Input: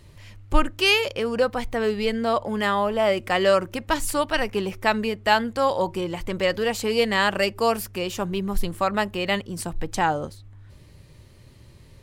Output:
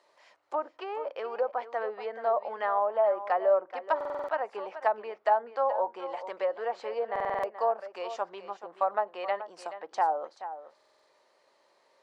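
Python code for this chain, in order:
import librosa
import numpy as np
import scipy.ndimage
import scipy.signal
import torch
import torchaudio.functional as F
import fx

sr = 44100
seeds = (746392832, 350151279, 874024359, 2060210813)

y = scipy.signal.sosfilt(scipy.signal.butter(2, 4700.0, 'lowpass', fs=sr, output='sos'), x)
y = fx.env_lowpass_down(y, sr, base_hz=790.0, full_db=-17.0)
y = fx.ladder_highpass(y, sr, hz=550.0, resonance_pct=35)
y = fx.peak_eq(y, sr, hz=2800.0, db=-9.5, octaves=1.2)
y = y + 10.0 ** (-12.5 / 20.0) * np.pad(y, (int(429 * sr / 1000.0), 0))[:len(y)]
y = fx.buffer_glitch(y, sr, at_s=(3.96, 7.11, 10.76), block=2048, repeats=6)
y = y * librosa.db_to_amplitude(3.5)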